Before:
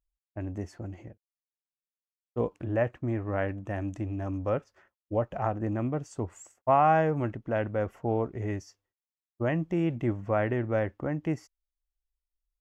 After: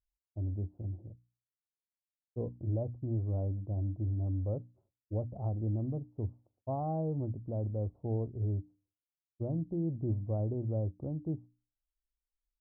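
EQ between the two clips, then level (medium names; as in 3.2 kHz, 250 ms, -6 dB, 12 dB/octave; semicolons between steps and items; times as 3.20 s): Gaussian low-pass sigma 14 samples; peaking EQ 95 Hz +9.5 dB 0.98 oct; hum notches 60/120/180/240/300 Hz; -6.0 dB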